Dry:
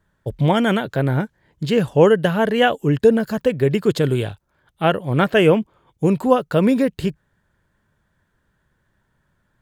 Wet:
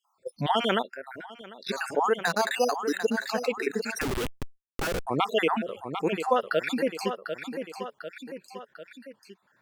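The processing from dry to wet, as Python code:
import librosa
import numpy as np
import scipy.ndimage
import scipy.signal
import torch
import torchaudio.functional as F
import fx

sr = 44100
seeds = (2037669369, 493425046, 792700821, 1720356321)

y = fx.spec_dropout(x, sr, seeds[0], share_pct=51)
y = fx.resample_bad(y, sr, factor=8, down='filtered', up='hold', at=(2.25, 3.05))
y = fx.high_shelf(y, sr, hz=7000.0, db=-5.0)
y = fx.noise_reduce_blind(y, sr, reduce_db=29)
y = fx.weighting(y, sr, curve='A')
y = fx.echo_feedback(y, sr, ms=747, feedback_pct=29, wet_db=-16.0)
y = fx.gate_flip(y, sr, shuts_db=-32.0, range_db=-24, at=(0.81, 1.68), fade=0.02)
y = fx.schmitt(y, sr, flips_db=-34.0, at=(4.01, 5.07))
y = fx.env_flatten(y, sr, amount_pct=50)
y = F.gain(torch.from_numpy(y), -6.0).numpy()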